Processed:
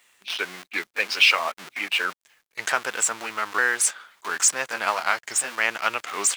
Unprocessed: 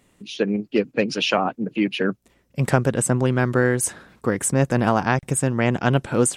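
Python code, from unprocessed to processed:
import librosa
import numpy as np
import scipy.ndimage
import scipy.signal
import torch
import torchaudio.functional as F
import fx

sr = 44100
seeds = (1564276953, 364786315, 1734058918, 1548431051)

p1 = fx.pitch_ramps(x, sr, semitones=-3.5, every_ms=896)
p2 = fx.schmitt(p1, sr, flips_db=-32.0)
p3 = p1 + (p2 * librosa.db_to_amplitude(-12.0))
p4 = scipy.signal.sosfilt(scipy.signal.butter(2, 1500.0, 'highpass', fs=sr, output='sos'), p3)
p5 = fx.high_shelf(p4, sr, hz=6100.0, db=-6.5)
p6 = fx.quant_dither(p5, sr, seeds[0], bits=12, dither='none')
y = p6 * librosa.db_to_amplitude(7.5)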